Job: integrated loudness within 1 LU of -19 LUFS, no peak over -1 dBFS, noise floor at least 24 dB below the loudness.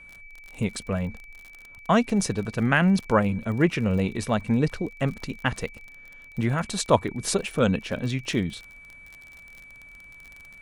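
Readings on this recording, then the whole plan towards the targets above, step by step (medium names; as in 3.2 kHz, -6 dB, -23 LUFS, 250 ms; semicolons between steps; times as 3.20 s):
tick rate 38 per s; steady tone 2.3 kHz; tone level -45 dBFS; loudness -25.5 LUFS; peak level -4.5 dBFS; loudness target -19.0 LUFS
-> de-click; band-stop 2.3 kHz, Q 30; trim +6.5 dB; peak limiter -1 dBFS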